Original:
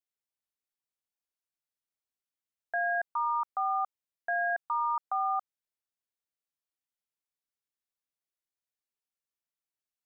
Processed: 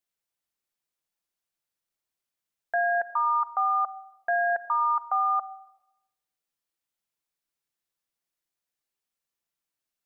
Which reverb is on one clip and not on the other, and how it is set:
rectangular room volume 3,900 cubic metres, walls furnished, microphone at 0.8 metres
level +5 dB

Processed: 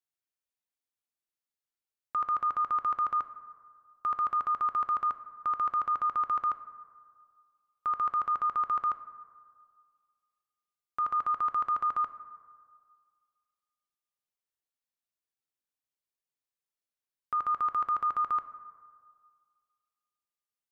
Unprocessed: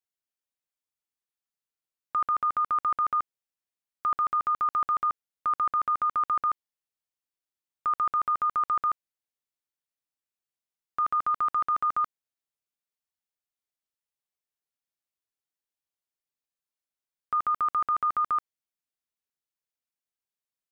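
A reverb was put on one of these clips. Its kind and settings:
dense smooth reverb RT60 1.9 s, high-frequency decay 0.4×, DRR 11 dB
level −3.5 dB

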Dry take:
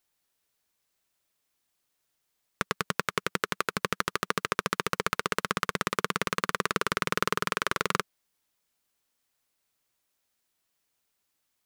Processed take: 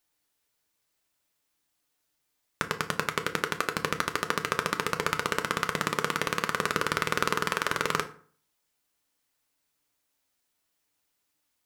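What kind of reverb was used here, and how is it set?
feedback delay network reverb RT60 0.48 s, low-frequency decay 1.1×, high-frequency decay 0.65×, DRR 6 dB

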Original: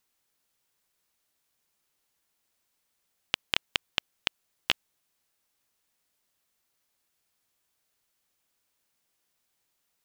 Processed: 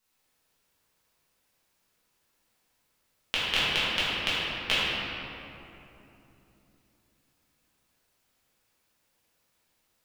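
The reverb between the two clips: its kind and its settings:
rectangular room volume 140 cubic metres, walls hard, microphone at 1.5 metres
level −4.5 dB

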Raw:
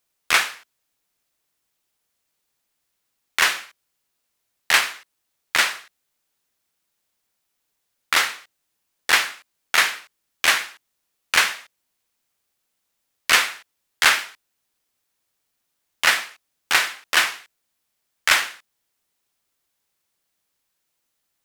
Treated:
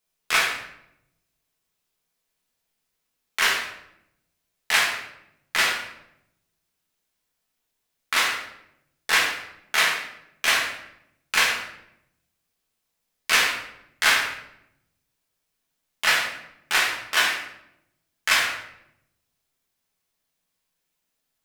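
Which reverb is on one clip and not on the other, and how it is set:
rectangular room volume 210 cubic metres, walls mixed, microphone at 1.5 metres
level −6.5 dB

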